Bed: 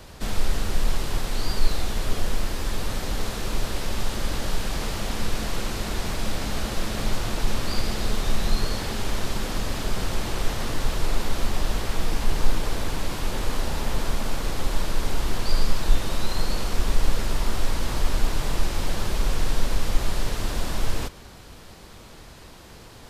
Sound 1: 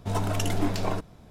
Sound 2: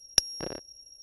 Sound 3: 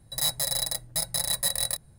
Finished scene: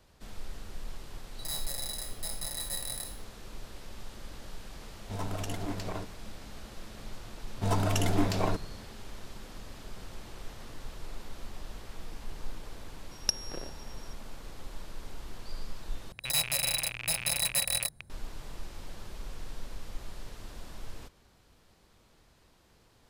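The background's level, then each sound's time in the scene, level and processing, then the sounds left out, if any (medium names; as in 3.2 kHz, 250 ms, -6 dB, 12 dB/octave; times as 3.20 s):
bed -18 dB
1.27 s: add 3 -12 dB + spectral sustain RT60 0.52 s
5.04 s: add 1 -7 dB + single-diode clipper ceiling -22.5 dBFS
7.56 s: add 1 -0.5 dB
13.11 s: add 2 -6 dB
16.12 s: replace with 3 -2.5 dB + rattle on loud lows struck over -48 dBFS, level -22 dBFS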